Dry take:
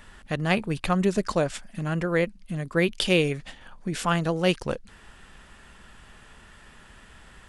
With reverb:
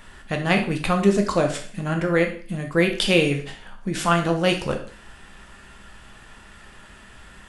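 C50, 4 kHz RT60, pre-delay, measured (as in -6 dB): 9.0 dB, 0.45 s, 5 ms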